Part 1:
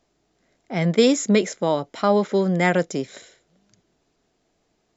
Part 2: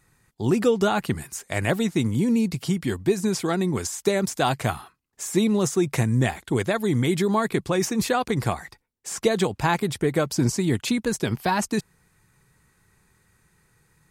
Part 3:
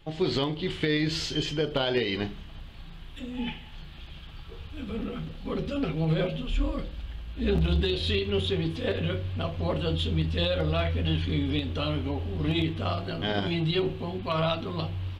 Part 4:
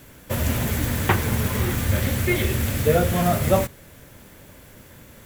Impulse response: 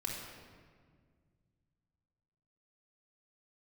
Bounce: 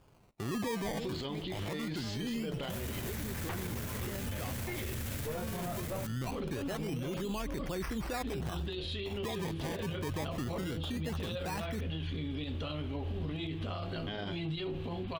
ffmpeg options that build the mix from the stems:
-filter_complex "[0:a]aeval=exprs='val(0)*gte(abs(val(0)),0.0708)':channel_layout=same,volume=-19dB[link_01];[1:a]deesser=0.8,equalizer=frequency=5800:width_type=o:width=0.31:gain=11,acrusher=samples=22:mix=1:aa=0.000001:lfo=1:lforange=22:lforate=0.23,volume=-1dB[link_02];[2:a]acompressor=threshold=-25dB:ratio=6,adelay=850,volume=2dB[link_03];[3:a]acrusher=bits=4:mix=0:aa=0.000001,aeval=exprs='(tanh(5.62*val(0)+0.35)-tanh(0.35))/5.62':channel_layout=same,adelay=2400,volume=0dB[link_04];[link_01][link_02][link_03]amix=inputs=3:normalize=0,alimiter=limit=-21.5dB:level=0:latency=1:release=29,volume=0dB[link_05];[link_04][link_05]amix=inputs=2:normalize=0,alimiter=level_in=5.5dB:limit=-24dB:level=0:latency=1:release=182,volume=-5.5dB"

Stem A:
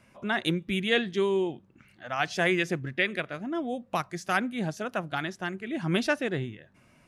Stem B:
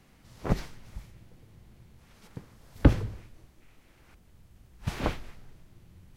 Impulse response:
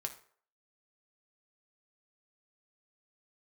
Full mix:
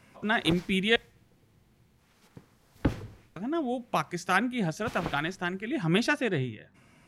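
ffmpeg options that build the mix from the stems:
-filter_complex "[0:a]volume=1dB,asplit=3[link_01][link_02][link_03];[link_01]atrim=end=0.96,asetpts=PTS-STARTPTS,afade=type=out:start_time=0.956:duration=0.004:curve=hsin[link_04];[link_02]atrim=start=0.96:end=3.36,asetpts=PTS-STARTPTS,volume=0[link_05];[link_03]atrim=start=3.36,asetpts=PTS-STARTPTS,afade=type=in:duration=0.004:curve=hsin[link_06];[link_04][link_05][link_06]concat=n=3:v=0:a=1,asplit=2[link_07][link_08];[link_08]volume=-21dB[link_09];[1:a]lowshelf=frequency=84:gain=-12,volume=-4.5dB[link_10];[2:a]atrim=start_sample=2205[link_11];[link_09][link_11]afir=irnorm=-1:irlink=0[link_12];[link_07][link_10][link_12]amix=inputs=3:normalize=0,bandreject=frequency=590:width=12"

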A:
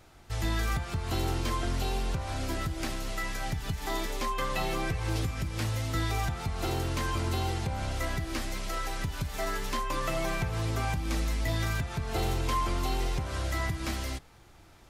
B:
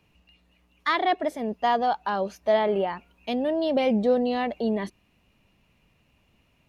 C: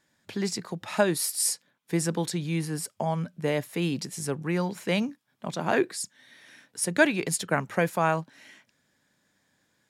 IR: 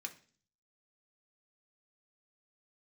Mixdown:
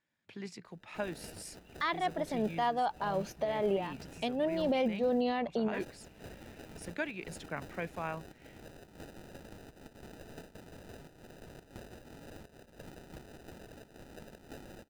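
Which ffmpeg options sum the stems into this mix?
-filter_complex "[0:a]crystalizer=i=8.5:c=0,bandpass=frequency=6500:width_type=q:width=1.6:csg=0,acrusher=samples=40:mix=1:aa=0.000001,adelay=650,volume=-20dB,asplit=3[link_01][link_02][link_03];[link_01]atrim=end=5.21,asetpts=PTS-STARTPTS,afade=type=out:start_time=5.206:duration=0.004:curve=hsin[link_04];[link_02]atrim=start=5.21:end=5.74,asetpts=PTS-STARTPTS,volume=0[link_05];[link_03]atrim=start=5.74,asetpts=PTS-STARTPTS,afade=type=in:duration=0.004:curve=hsin[link_06];[link_04][link_05][link_06]concat=n=3:v=0:a=1[link_07];[1:a]adelay=950,volume=2dB[link_08];[2:a]lowpass=frequency=3300:poles=1,equalizer=frequency=2500:width_type=o:width=0.77:gain=6.5,tremolo=f=57:d=0.261,volume=-13dB,asplit=2[link_09][link_10];[link_10]apad=whole_len=336728[link_11];[link_08][link_11]sidechaincompress=threshold=-44dB:ratio=8:attack=6:release=281[link_12];[link_07][link_12][link_09]amix=inputs=3:normalize=0,alimiter=limit=-22dB:level=0:latency=1:release=243"

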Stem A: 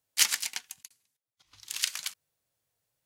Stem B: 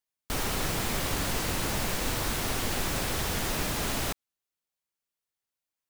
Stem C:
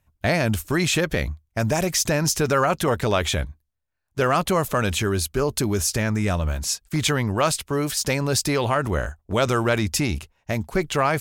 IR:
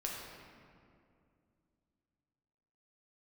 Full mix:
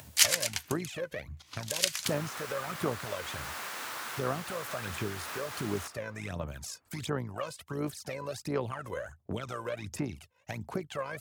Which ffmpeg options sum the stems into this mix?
-filter_complex "[0:a]volume=0.5dB,asplit=2[link_01][link_02];[link_02]volume=-23dB[link_03];[1:a]highpass=frequency=880:poles=1,equalizer=frequency=1300:width=0.94:gain=9.5,adelay=1750,volume=-15dB,asplit=2[link_04][link_05];[link_05]volume=-12dB[link_06];[2:a]acrossover=split=350|1700[link_07][link_08][link_09];[link_07]acompressor=threshold=-29dB:ratio=4[link_10];[link_08]acompressor=threshold=-24dB:ratio=4[link_11];[link_09]acompressor=threshold=-35dB:ratio=4[link_12];[link_10][link_11][link_12]amix=inputs=3:normalize=0,tremolo=f=56:d=0.519,aphaser=in_gain=1:out_gain=1:delay=2:decay=0.72:speed=1.4:type=sinusoidal,volume=-13.5dB[link_13];[3:a]atrim=start_sample=2205[link_14];[link_03][link_06]amix=inputs=2:normalize=0[link_15];[link_15][link_14]afir=irnorm=-1:irlink=0[link_16];[link_01][link_04][link_13][link_16]amix=inputs=4:normalize=0,highpass=frequency=92:width=0.5412,highpass=frequency=92:width=1.3066,acompressor=mode=upward:threshold=-32dB:ratio=2.5"

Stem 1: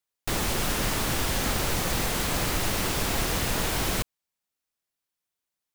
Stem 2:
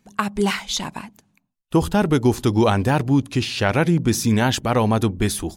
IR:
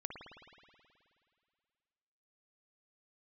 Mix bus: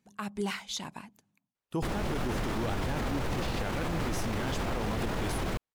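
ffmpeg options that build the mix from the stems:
-filter_complex "[0:a]lowpass=frequency=1300:poles=1,adelay=1550,volume=2.5dB[link_01];[1:a]highpass=62,volume=-11.5dB[link_02];[link_01][link_02]amix=inputs=2:normalize=0,alimiter=limit=-23.5dB:level=0:latency=1:release=33"

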